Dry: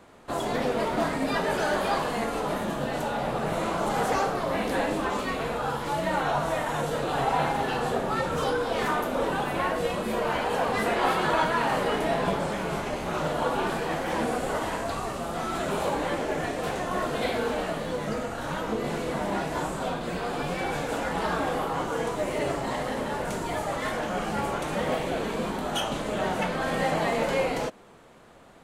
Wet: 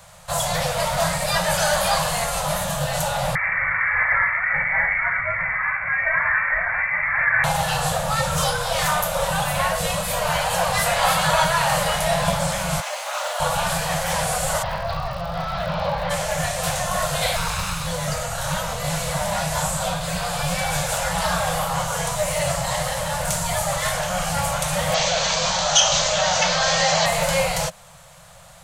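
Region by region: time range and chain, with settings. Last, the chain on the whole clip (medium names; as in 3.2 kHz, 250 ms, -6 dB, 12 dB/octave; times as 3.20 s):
3.35–7.44 s: high-pass 200 Hz + frequency inversion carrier 2.5 kHz
12.80–13.40 s: Bessel high-pass 680 Hz, order 8 + treble shelf 7 kHz -8.5 dB + companded quantiser 8-bit
14.62–16.09 s: steep low-pass 5.1 kHz 48 dB/octave + treble shelf 2.4 kHz -8.5 dB + crackle 130 per s -48 dBFS
17.36–17.87 s: comb filter that takes the minimum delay 0.78 ms + loudspeaker Doppler distortion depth 0.1 ms
24.94–27.06 s: steep low-pass 6.4 kHz 48 dB/octave + tone controls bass -9 dB, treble +11 dB + level flattener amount 50%
whole clip: elliptic band-stop 170–550 Hz, stop band 40 dB; tone controls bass +5 dB, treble +13 dB; trim +6 dB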